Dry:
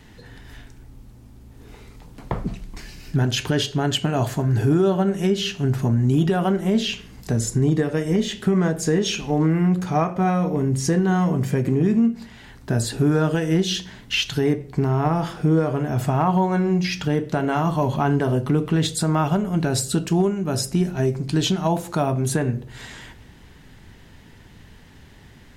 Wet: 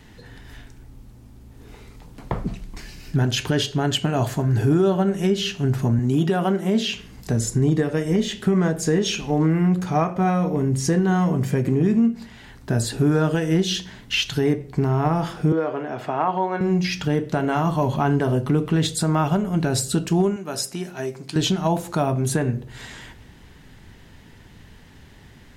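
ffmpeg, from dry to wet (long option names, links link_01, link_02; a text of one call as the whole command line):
ffmpeg -i in.wav -filter_complex "[0:a]asettb=1/sr,asplit=3[link_01][link_02][link_03];[link_01]atrim=end=5.994[link_04];[link_02]atrim=start=5.99:end=6.95,asetpts=PTS-STARTPTS,afade=type=in:duration=0.004:curve=qsin,afade=type=out:start_time=0.956:duration=0.004:curve=qsin,highpass=140[link_05];[link_03]atrim=start=6.946[link_06];[link_04][link_05]acrossfade=duration=0.004:curve1=hsin:curve2=qsin[link_07];[link_07][link_06]acrossfade=duration=0.004:curve1=qsin:curve2=hsin,asettb=1/sr,asplit=3[link_08][link_09][link_10];[link_08]atrim=end=15.524[link_11];[link_09]atrim=start=15.52:end=16.61,asetpts=PTS-STARTPTS,afade=type=in:duration=0.004:curve=qsin,afade=type=out:start_time=1.086:duration=0.004:curve=qsin,acrossover=split=280 4300:gain=0.112 1 0.112[link_12][link_13][link_14];[link_12][link_13][link_14]amix=inputs=3:normalize=0[link_15];[link_10]atrim=start=16.606[link_16];[link_11][link_15]acrossfade=duration=0.004:curve1=hsin:curve2=qsin[link_17];[link_17][link_16]acrossfade=duration=0.004:curve1=qsin:curve2=hsin,asettb=1/sr,asplit=3[link_18][link_19][link_20];[link_18]atrim=end=20.364[link_21];[link_19]atrim=start=20.36:end=21.36,asetpts=PTS-STARTPTS,afade=type=in:duration=0.004:curve=qsin,afade=type=out:start_time=0.996:duration=0.004:curve=qsin,highpass=frequency=640:poles=1[link_22];[link_20]atrim=start=21.356[link_23];[link_21][link_22]acrossfade=duration=0.004:curve1=hsin:curve2=qsin[link_24];[link_24][link_23]acrossfade=duration=0.004:curve1=qsin:curve2=hsin" out.wav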